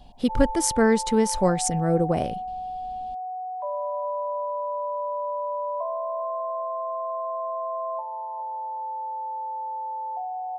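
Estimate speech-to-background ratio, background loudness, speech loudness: 8.0 dB, −31.0 LKFS, −23.0 LKFS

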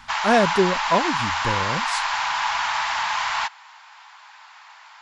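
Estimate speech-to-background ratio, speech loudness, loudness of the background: −0.5 dB, −23.5 LKFS, −23.0 LKFS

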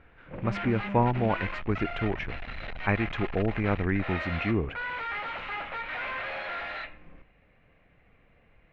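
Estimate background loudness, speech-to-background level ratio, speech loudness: −35.5 LKFS, 6.0 dB, −29.5 LKFS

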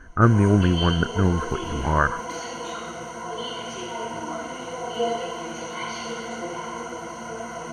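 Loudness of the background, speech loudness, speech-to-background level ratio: −31.5 LKFS, −21.0 LKFS, 10.5 dB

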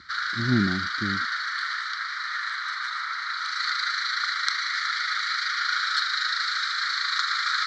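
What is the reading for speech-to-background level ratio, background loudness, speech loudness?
−2.5 dB, −26.0 LKFS, −28.5 LKFS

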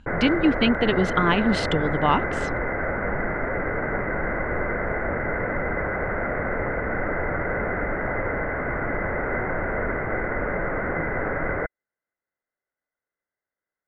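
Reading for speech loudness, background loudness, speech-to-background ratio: −22.5 LKFS, −26.5 LKFS, 4.0 dB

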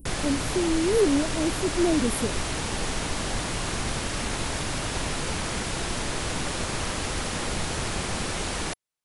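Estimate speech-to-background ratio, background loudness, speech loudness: 3.0 dB, −29.0 LKFS, −26.0 LKFS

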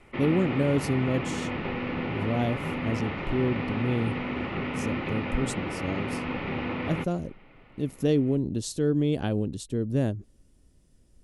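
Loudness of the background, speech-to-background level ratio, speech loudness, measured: −32.0 LKFS, 3.0 dB, −29.0 LKFS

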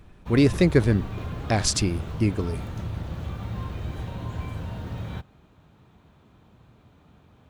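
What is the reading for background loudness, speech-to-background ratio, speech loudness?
−34.0 LKFS, 10.5 dB, −23.5 LKFS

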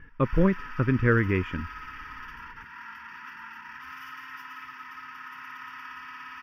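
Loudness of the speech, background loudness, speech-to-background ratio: −25.0 LKFS, −41.5 LKFS, 16.5 dB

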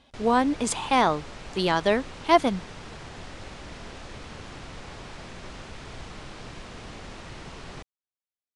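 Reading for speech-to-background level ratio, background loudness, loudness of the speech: 18.0 dB, −42.0 LKFS, −24.0 LKFS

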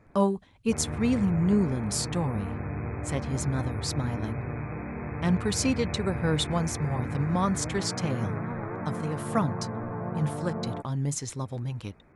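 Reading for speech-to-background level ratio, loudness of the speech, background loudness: 5.0 dB, −29.5 LKFS, −34.5 LKFS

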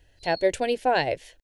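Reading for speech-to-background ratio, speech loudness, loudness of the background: 16.0 dB, −25.0 LKFS, −41.0 LKFS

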